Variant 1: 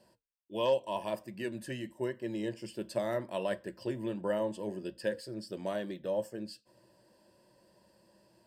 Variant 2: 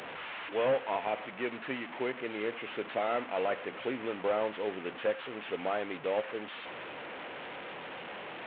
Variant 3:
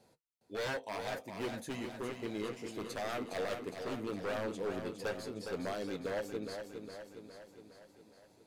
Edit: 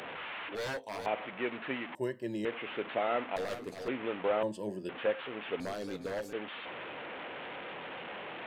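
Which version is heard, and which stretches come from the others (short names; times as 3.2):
2
0.55–1.06 from 3
1.95–2.45 from 1
3.36–3.88 from 3
4.43–4.89 from 1
5.6–6.33 from 3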